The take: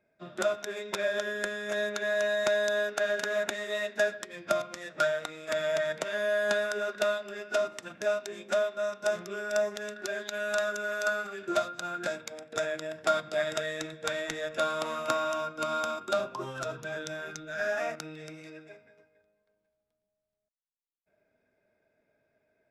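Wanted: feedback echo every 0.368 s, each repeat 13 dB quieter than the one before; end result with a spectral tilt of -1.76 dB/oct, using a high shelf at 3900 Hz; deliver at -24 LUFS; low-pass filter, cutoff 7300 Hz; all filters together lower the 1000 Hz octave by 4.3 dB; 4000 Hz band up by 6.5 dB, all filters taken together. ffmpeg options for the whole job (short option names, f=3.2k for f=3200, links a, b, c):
-af "lowpass=7.3k,equalizer=f=1k:t=o:g=-8.5,highshelf=f=3.9k:g=4,equalizer=f=4k:t=o:g=6,aecho=1:1:368|736|1104:0.224|0.0493|0.0108,volume=8dB"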